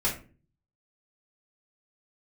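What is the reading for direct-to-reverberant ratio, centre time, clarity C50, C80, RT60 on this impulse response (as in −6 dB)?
−5.5 dB, 23 ms, 8.5 dB, 14.0 dB, 0.40 s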